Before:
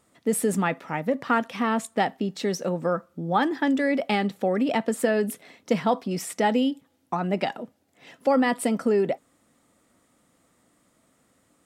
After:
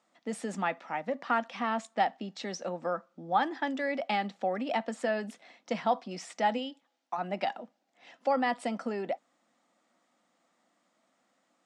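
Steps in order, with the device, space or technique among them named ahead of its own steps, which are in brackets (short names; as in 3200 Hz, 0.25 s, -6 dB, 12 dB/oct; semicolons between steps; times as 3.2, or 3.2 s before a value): television speaker (speaker cabinet 220–6700 Hz, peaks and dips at 280 Hz -6 dB, 420 Hz -10 dB, 750 Hz +5 dB); 6.57–7.17 HPF 340 Hz -> 810 Hz 6 dB/oct; gain -5.5 dB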